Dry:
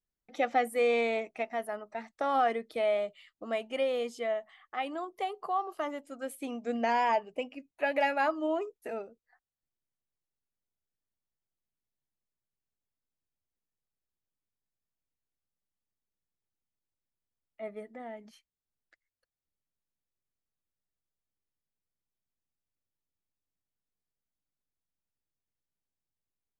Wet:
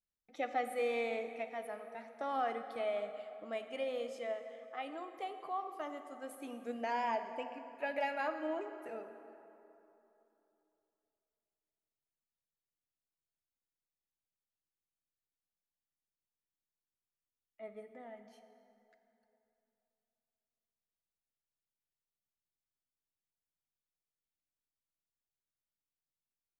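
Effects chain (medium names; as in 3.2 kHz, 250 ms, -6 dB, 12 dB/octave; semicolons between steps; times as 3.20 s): plate-style reverb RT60 3.1 s, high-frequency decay 0.6×, DRR 7.5 dB; trim -8.5 dB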